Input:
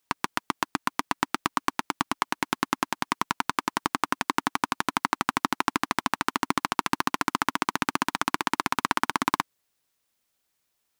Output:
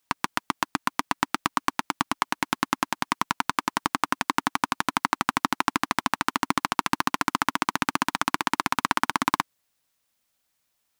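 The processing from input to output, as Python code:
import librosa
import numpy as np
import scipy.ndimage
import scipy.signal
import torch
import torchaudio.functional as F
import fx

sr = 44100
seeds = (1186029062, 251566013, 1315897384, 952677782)

y = fx.peak_eq(x, sr, hz=390.0, db=-8.5, octaves=0.24)
y = y * librosa.db_to_amplitude(1.5)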